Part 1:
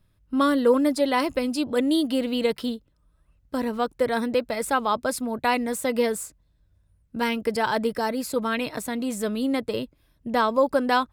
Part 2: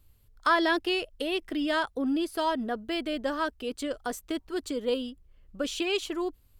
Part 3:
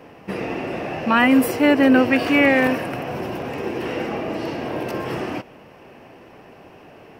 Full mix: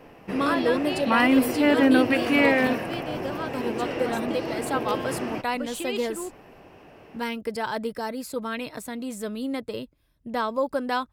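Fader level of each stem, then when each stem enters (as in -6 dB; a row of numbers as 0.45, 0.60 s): -5.0, -4.5, -4.5 dB; 0.00, 0.00, 0.00 s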